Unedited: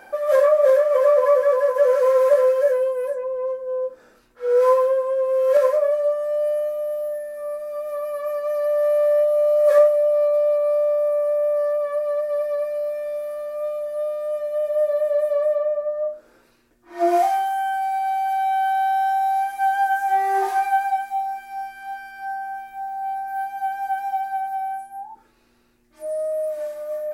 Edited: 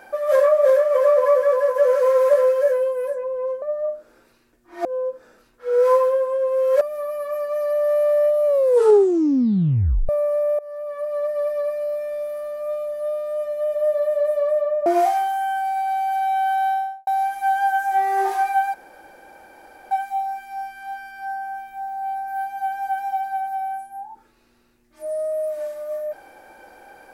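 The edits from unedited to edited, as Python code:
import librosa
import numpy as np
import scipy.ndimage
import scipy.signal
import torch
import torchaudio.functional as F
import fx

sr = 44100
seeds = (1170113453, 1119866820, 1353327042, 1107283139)

y = fx.studio_fade_out(x, sr, start_s=18.83, length_s=0.41)
y = fx.edit(y, sr, fx.cut(start_s=5.58, length_s=2.17),
    fx.tape_stop(start_s=9.4, length_s=1.63),
    fx.fade_in_from(start_s=11.53, length_s=0.7, floor_db=-21.0),
    fx.move(start_s=15.8, length_s=1.23, to_s=3.62),
    fx.insert_room_tone(at_s=20.91, length_s=1.17), tone=tone)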